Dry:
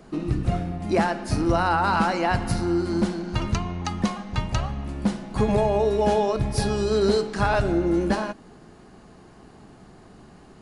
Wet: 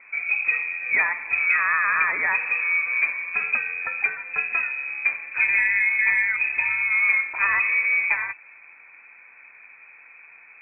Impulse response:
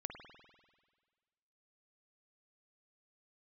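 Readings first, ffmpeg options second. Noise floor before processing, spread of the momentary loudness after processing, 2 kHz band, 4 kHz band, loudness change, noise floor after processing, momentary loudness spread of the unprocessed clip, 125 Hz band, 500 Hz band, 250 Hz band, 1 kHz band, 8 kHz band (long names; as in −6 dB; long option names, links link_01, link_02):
−49 dBFS, 6 LU, +14.5 dB, below −40 dB, +3.5 dB, −49 dBFS, 7 LU, below −30 dB, −23.5 dB, below −30 dB, −6.0 dB, below −40 dB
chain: -af "lowpass=frequency=2200:width_type=q:width=0.5098,lowpass=frequency=2200:width_type=q:width=0.6013,lowpass=frequency=2200:width_type=q:width=0.9,lowpass=frequency=2200:width_type=q:width=2.563,afreqshift=-2600"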